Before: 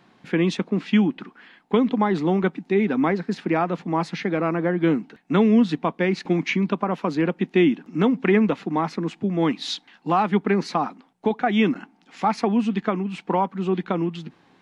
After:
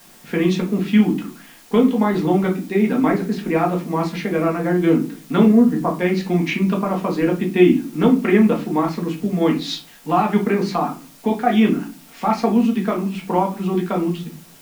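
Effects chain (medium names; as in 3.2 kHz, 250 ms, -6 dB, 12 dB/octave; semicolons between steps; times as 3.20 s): 5.46–5.94 s: steep low-pass 1.9 kHz 48 dB/octave; in parallel at -11 dB: word length cut 6-bit, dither triangular; on the sum: simulated room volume 150 m³, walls furnished, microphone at 1.7 m; trim -3.5 dB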